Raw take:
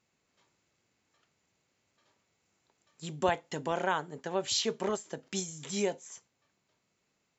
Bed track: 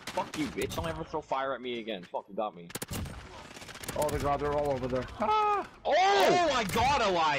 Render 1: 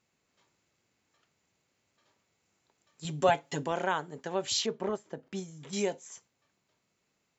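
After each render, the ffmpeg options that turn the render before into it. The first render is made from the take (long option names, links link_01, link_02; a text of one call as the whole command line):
ffmpeg -i in.wav -filter_complex "[0:a]asettb=1/sr,asplit=3[link_01][link_02][link_03];[link_01]atrim=end=3.044[link_04];[link_02]atrim=start=3.04:end=3.64,asetpts=PTS-STARTPTS,afade=type=in:duration=0.004:curve=qsin,afade=type=out:start_time=0.596:duration=0.004:curve=qsin,aecho=1:1:7.1:0.93,atrim=end_sample=26460[link_05];[link_03]atrim=start=3.636[link_06];[link_04][link_05]acrossfade=duration=0.004:curve1=hsin:curve2=qsin[link_07];[link_07][link_06]acrossfade=duration=0.004:curve1=qsin:curve2=hsin,asettb=1/sr,asplit=3[link_08][link_09][link_10];[link_08]atrim=end=4.664[link_11];[link_09]atrim=start=4.66:end=5.73,asetpts=PTS-STARTPTS,afade=type=in:duration=0.004:curve=qsin,afade=type=out:start_time=1.066:duration=0.004:curve=qsin,lowpass=frequency=1300:poles=1[link_12];[link_10]atrim=start=5.726[link_13];[link_11][link_12]acrossfade=duration=0.004:curve1=hsin:curve2=qsin[link_14];[link_14][link_13]acrossfade=duration=0.004:curve1=qsin:curve2=hsin" out.wav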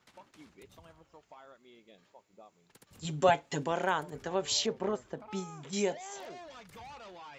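ffmpeg -i in.wav -i bed.wav -filter_complex "[1:a]volume=-22dB[link_01];[0:a][link_01]amix=inputs=2:normalize=0" out.wav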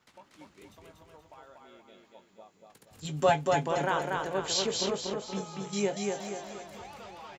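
ffmpeg -i in.wav -filter_complex "[0:a]asplit=2[link_01][link_02];[link_02]adelay=20,volume=-11dB[link_03];[link_01][link_03]amix=inputs=2:normalize=0,aecho=1:1:238|476|714|952|1190|1428:0.708|0.319|0.143|0.0645|0.029|0.0131" out.wav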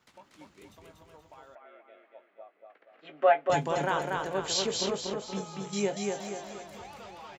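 ffmpeg -i in.wav -filter_complex "[0:a]asettb=1/sr,asplit=3[link_01][link_02][link_03];[link_01]atrim=end=1.554[link_04];[link_02]atrim=start=1.55:end=3.5,asetpts=PTS-STARTPTS,afade=type=in:duration=0.004:curve=qsin,afade=type=out:start_time=1.946:duration=0.004:curve=qsin,highpass=frequency=350:width=0.5412,highpass=frequency=350:width=1.3066,equalizer=frequency=420:width_type=q:width=4:gain=-5,equalizer=frequency=650:width_type=q:width=4:gain=8,equalizer=frequency=940:width_type=q:width=4:gain=-8,equalizer=frequency=1300:width_type=q:width=4:gain=4,equalizer=frequency=2000:width_type=q:width=4:gain=4,lowpass=frequency=2500:width=0.5412,lowpass=frequency=2500:width=1.3066[link_05];[link_03]atrim=start=3.496[link_06];[link_04][link_05]acrossfade=duration=0.004:curve1=hsin:curve2=qsin[link_07];[link_07][link_06]acrossfade=duration=0.004:curve1=qsin:curve2=hsin" out.wav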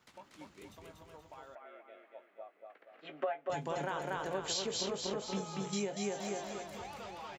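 ffmpeg -i in.wav -af "acompressor=threshold=-32dB:ratio=20" out.wav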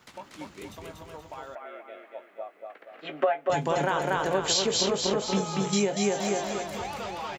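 ffmpeg -i in.wav -af "volume=11dB" out.wav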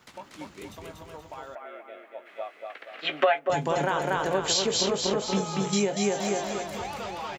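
ffmpeg -i in.wav -filter_complex "[0:a]asplit=3[link_01][link_02][link_03];[link_01]afade=type=out:start_time=2.25:duration=0.02[link_04];[link_02]equalizer=frequency=4000:width_type=o:width=2.9:gain=13.5,afade=type=in:start_time=2.25:duration=0.02,afade=type=out:start_time=3.38:duration=0.02[link_05];[link_03]afade=type=in:start_time=3.38:duration=0.02[link_06];[link_04][link_05][link_06]amix=inputs=3:normalize=0" out.wav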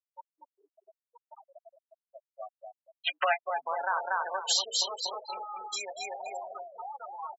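ffmpeg -i in.wav -af "afftfilt=real='re*gte(hypot(re,im),0.0708)':imag='im*gte(hypot(re,im),0.0708)':win_size=1024:overlap=0.75,highpass=frequency=760:width=0.5412,highpass=frequency=760:width=1.3066" out.wav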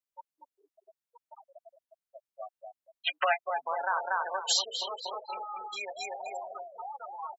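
ffmpeg -i in.wav -filter_complex "[0:a]asettb=1/sr,asplit=3[link_01][link_02][link_03];[link_01]atrim=end=4.724[link_04];[link_02]atrim=start=4.72:end=5.99,asetpts=PTS-STARTPTS,afade=type=in:duration=0.004:curve=qsin,afade=type=out:start_time=1.266:duration=0.004:curve=qsin,highshelf=frequency=4000:width_type=q:width=1.5:gain=-11.5[link_05];[link_03]atrim=start=5.986[link_06];[link_04][link_05]acrossfade=duration=0.004:curve1=hsin:curve2=qsin[link_07];[link_07][link_06]acrossfade=duration=0.004:curve1=qsin:curve2=hsin" out.wav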